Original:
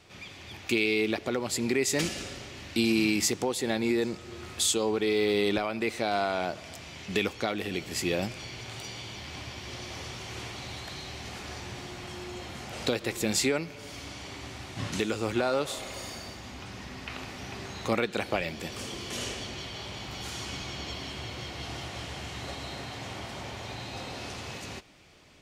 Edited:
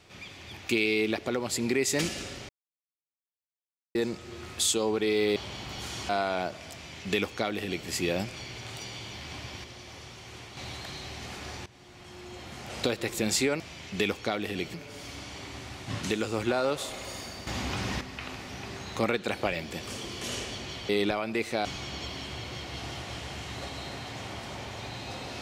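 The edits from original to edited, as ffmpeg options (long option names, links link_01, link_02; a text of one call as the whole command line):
ffmpeg -i in.wav -filter_complex "[0:a]asplit=14[link_01][link_02][link_03][link_04][link_05][link_06][link_07][link_08][link_09][link_10][link_11][link_12][link_13][link_14];[link_01]atrim=end=2.49,asetpts=PTS-STARTPTS,afade=type=out:start_time=2.486:duration=0.004:curve=hsin[link_15];[link_02]atrim=start=2.49:end=3.95,asetpts=PTS-STARTPTS,volume=0[link_16];[link_03]atrim=start=3.95:end=5.362,asetpts=PTS-STARTPTS,afade=type=in:duration=0.004:curve=hsin[link_17];[link_04]atrim=start=19.778:end=20.512[link_18];[link_05]atrim=start=6.118:end=9.672[link_19];[link_06]atrim=start=9.668:end=10.602,asetpts=PTS-STARTPTS,volume=-6dB[link_20];[link_07]atrim=start=10.598:end=11.69,asetpts=PTS-STARTPTS,afade=type=out:start_time=1.088:duration=0.004:curve=hsin:silence=0.11885[link_21];[link_08]atrim=start=11.69:end=13.632,asetpts=PTS-STARTPTS,afade=type=in:duration=1.13:silence=0.11885[link_22];[link_09]atrim=start=6.758:end=7.902[link_23];[link_10]atrim=start=13.628:end=16.362[link_24];[link_11]atrim=start=16.358:end=16.902,asetpts=PTS-STARTPTS,volume=10dB[link_25];[link_12]atrim=start=16.898:end=19.782[link_26];[link_13]atrim=start=5.358:end=6.122[link_27];[link_14]atrim=start=20.508[link_28];[link_15][link_16][link_17]concat=n=3:v=0:a=1[link_29];[link_29][link_18]acrossfade=duration=0.004:curve1=hsin:curve2=hsin[link_30];[link_30][link_19]acrossfade=duration=0.004:curve1=hsin:curve2=hsin[link_31];[link_31][link_20]acrossfade=duration=0.004:curve1=hsin:curve2=hsin[link_32];[link_21][link_22]concat=n=2:v=0:a=1[link_33];[link_32][link_33]acrossfade=duration=0.004:curve1=hsin:curve2=hsin[link_34];[link_34][link_23]acrossfade=duration=0.004:curve1=hsin:curve2=hsin[link_35];[link_35][link_24]acrossfade=duration=0.004:curve1=hsin:curve2=hsin[link_36];[link_36][link_25]acrossfade=duration=0.004:curve1=hsin:curve2=hsin[link_37];[link_37][link_26]acrossfade=duration=0.004:curve1=hsin:curve2=hsin[link_38];[link_38][link_27]acrossfade=duration=0.004:curve1=hsin:curve2=hsin[link_39];[link_39][link_28]acrossfade=duration=0.004:curve1=hsin:curve2=hsin" out.wav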